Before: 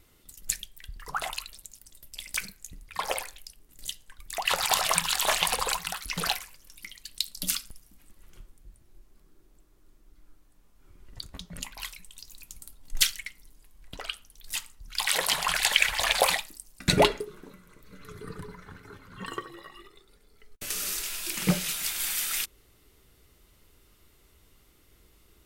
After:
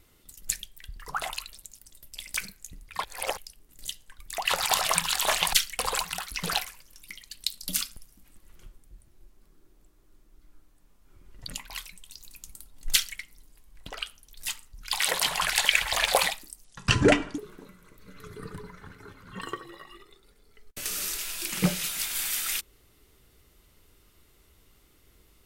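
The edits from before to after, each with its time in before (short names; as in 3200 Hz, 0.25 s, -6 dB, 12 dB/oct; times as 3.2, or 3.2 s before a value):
3.04–3.37 reverse
11.22–11.55 cut
12.99–13.25 copy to 5.53
16.71–17.23 speed 70%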